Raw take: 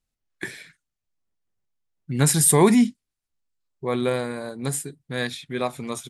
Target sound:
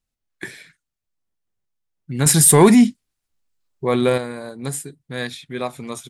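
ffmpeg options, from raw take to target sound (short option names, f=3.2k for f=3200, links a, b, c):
-filter_complex "[0:a]asettb=1/sr,asplit=3[a][b][c];[a]atrim=end=2.264[d];[b]atrim=start=2.26:end=4.18,asetpts=PTS-STARTPTS,afade=t=in:d=0.004:c=qsin,afade=t=out:st=1.916:d=0.004:c=qsin,acontrast=62[e];[c]atrim=start=4.176[f];[d][e]acrossfade=d=0.004:c1=hsin:c2=qsin[g];[g][f]acrossfade=d=0.004:c1=qsin:c2=hsin"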